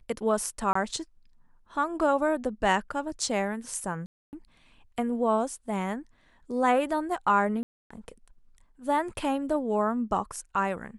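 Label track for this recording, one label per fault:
0.730000	0.750000	drop-out 24 ms
4.060000	4.330000	drop-out 269 ms
7.630000	7.910000	drop-out 275 ms

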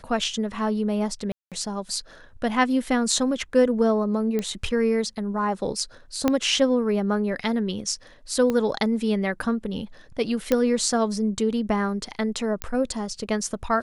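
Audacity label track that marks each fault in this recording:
1.320000	1.520000	drop-out 197 ms
4.390000	4.390000	click −14 dBFS
6.280000	6.280000	click −7 dBFS
8.500000	8.500000	click −13 dBFS
10.520000	10.520000	click −7 dBFS
12.620000	12.620000	click −10 dBFS

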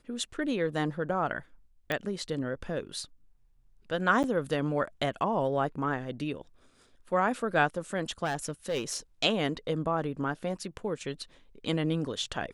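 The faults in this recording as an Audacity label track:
1.920000	1.920000	click −16 dBFS
4.230000	4.240000	drop-out 9 ms
8.240000	8.960000	clipping −26 dBFS

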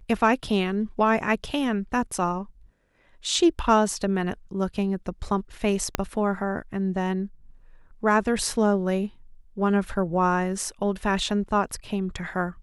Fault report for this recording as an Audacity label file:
5.950000	5.950000	click −7 dBFS

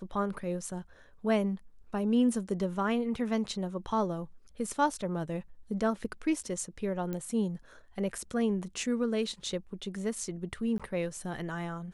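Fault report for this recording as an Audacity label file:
7.130000	7.130000	click −23 dBFS
10.780000	10.800000	drop-out

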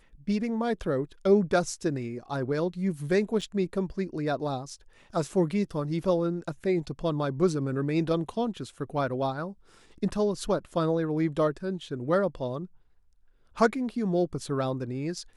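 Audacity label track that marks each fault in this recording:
3.410000	3.420000	drop-out 5.8 ms

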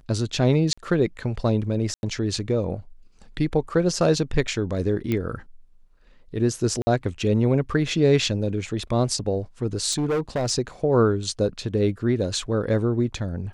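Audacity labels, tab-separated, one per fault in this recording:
0.730000	0.780000	drop-out 45 ms
1.940000	2.030000	drop-out 91 ms
5.120000	5.120000	click −13 dBFS
6.820000	6.870000	drop-out 50 ms
9.910000	10.510000	clipping −20 dBFS

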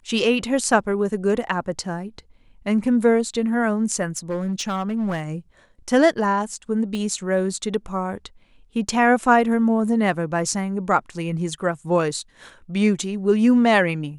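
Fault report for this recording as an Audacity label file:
4.170000	5.230000	clipping −20 dBFS
6.950000	6.950000	click −17 dBFS

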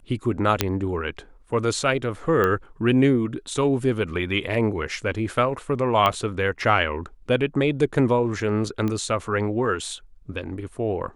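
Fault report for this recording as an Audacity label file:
0.610000	0.610000	click −2 dBFS
2.440000	2.440000	click −11 dBFS
6.060000	6.060000	click −9 dBFS
8.880000	8.880000	click −15 dBFS

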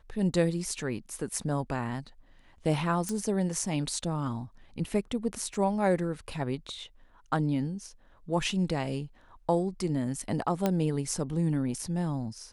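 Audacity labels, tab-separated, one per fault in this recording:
3.090000	3.090000	click −18 dBFS
5.540000	5.540000	drop-out 2.7 ms
10.660000	10.660000	click −13 dBFS

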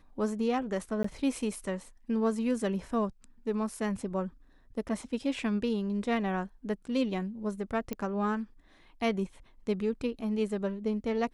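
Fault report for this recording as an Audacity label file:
1.030000	1.040000	drop-out 14 ms
7.930000	7.930000	click −20 dBFS

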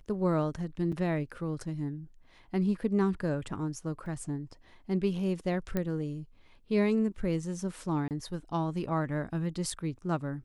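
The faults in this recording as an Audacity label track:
0.920000	0.930000	drop-out 5.6 ms
4.060000	4.060000	drop-out 3.1 ms
5.770000	5.770000	click −18 dBFS
8.080000	8.110000	drop-out 28 ms

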